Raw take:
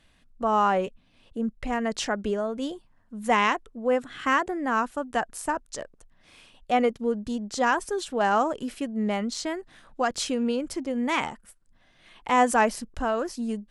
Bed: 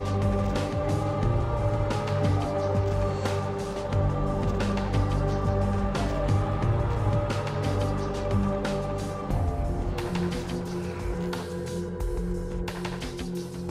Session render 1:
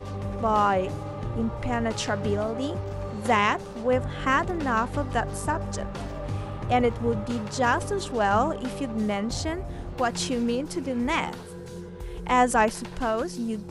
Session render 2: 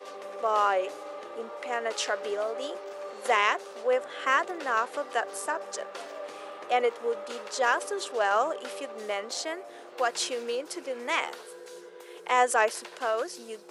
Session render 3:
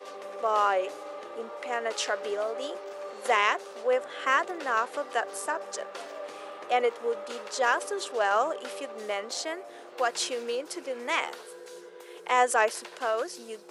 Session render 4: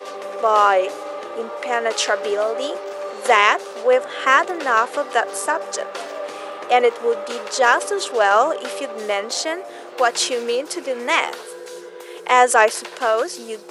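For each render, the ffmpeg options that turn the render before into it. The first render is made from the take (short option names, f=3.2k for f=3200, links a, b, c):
-filter_complex "[1:a]volume=-7dB[a];[0:a][a]amix=inputs=2:normalize=0"
-af "highpass=f=430:w=0.5412,highpass=f=430:w=1.3066,equalizer=f=870:t=o:w=0.39:g=-5.5"
-af anull
-af "volume=10dB,alimiter=limit=-1dB:level=0:latency=1"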